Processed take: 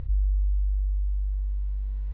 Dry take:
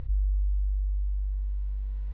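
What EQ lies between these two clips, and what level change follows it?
parametric band 87 Hz +3 dB 2.7 octaves
0.0 dB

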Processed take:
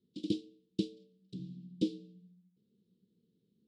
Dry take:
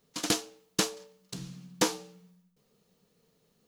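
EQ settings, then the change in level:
elliptic band-stop filter 340–3,900 Hz, stop band 50 dB
high-frequency loss of the air 470 metres
loudspeaker in its box 150–8,500 Hz, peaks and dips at 150 Hz −9 dB, 280 Hz −7 dB, 420 Hz −4 dB, 1,700 Hz −7 dB, 4,300 Hz −6 dB, 6,300 Hz −7 dB
+6.0 dB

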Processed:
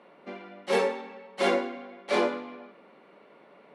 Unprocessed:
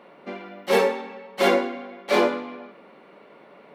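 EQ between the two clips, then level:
high-pass filter 110 Hz
Butterworth low-pass 11,000 Hz 72 dB per octave
−5.5 dB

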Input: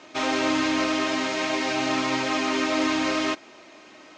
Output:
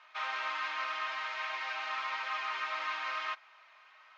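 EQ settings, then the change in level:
four-pole ladder high-pass 920 Hz, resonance 35%
low-pass filter 3,600 Hz 12 dB per octave
high-frequency loss of the air 51 metres
−1.5 dB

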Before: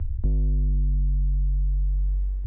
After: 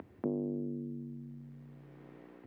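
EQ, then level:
high-pass filter 270 Hz 24 dB per octave
+8.5 dB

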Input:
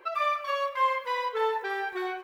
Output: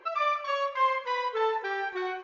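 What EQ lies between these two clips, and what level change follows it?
linear-phase brick-wall low-pass 7,000 Hz
0.0 dB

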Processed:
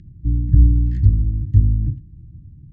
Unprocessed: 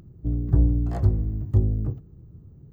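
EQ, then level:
Chebyshev band-stop filter 320–1,700 Hz, order 4
high-frequency loss of the air 90 metres
low-shelf EQ 120 Hz +11 dB
0.0 dB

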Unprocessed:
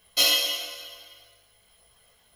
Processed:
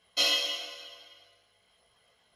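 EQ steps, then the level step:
high-pass filter 150 Hz 6 dB per octave
high-frequency loss of the air 66 metres
−3.0 dB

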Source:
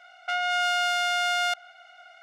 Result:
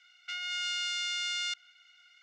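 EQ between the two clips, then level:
Bessel high-pass filter 2,800 Hz, order 4
low-pass with resonance 7,500 Hz, resonance Q 1.9
high-frequency loss of the air 100 metres
0.0 dB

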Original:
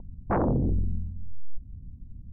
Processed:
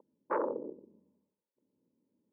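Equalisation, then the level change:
high-pass filter 420 Hz 24 dB per octave
Butterworth band-reject 720 Hz, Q 3.2
high-shelf EQ 2,000 Hz −11.5 dB
0.0 dB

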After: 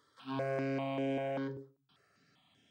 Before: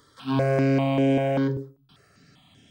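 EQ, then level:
low-shelf EQ 63 Hz −11 dB
low-shelf EQ 390 Hz −7.5 dB
high-shelf EQ 4,700 Hz −8 dB
−9.0 dB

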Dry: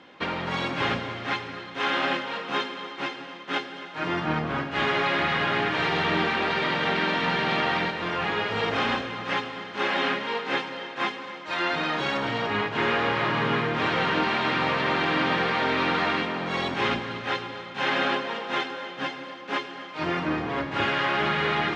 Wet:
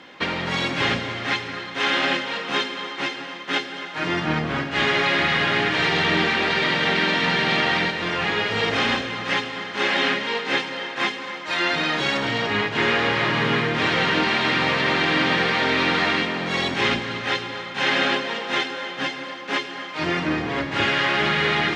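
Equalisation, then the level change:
dynamic equaliser 1,100 Hz, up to −4 dB, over −35 dBFS, Q 0.82
parametric band 1,900 Hz +3.5 dB 0.41 octaves
high-shelf EQ 3,900 Hz +8 dB
+4.0 dB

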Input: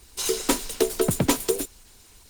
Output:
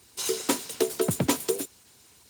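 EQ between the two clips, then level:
high-pass filter 87 Hz 24 dB per octave
−3.0 dB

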